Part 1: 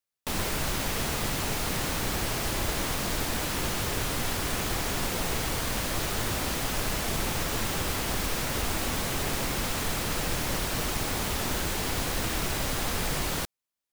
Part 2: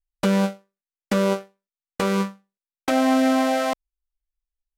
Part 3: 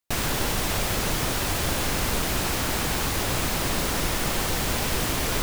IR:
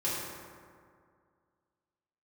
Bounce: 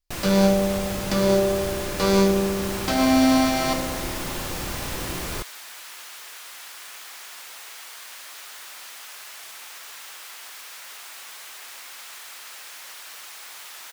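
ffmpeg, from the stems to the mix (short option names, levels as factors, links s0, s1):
-filter_complex "[0:a]highpass=1200,adelay=2350,volume=0.422[s0];[1:a]equalizer=f=4800:t=o:w=0.77:g=12,alimiter=limit=0.168:level=0:latency=1,volume=0.794,asplit=2[s1][s2];[s2]volume=0.562[s3];[2:a]volume=0.376,asplit=2[s4][s5];[s5]volume=0.335[s6];[3:a]atrim=start_sample=2205[s7];[s3][s6]amix=inputs=2:normalize=0[s8];[s8][s7]afir=irnorm=-1:irlink=0[s9];[s0][s1][s4][s9]amix=inputs=4:normalize=0"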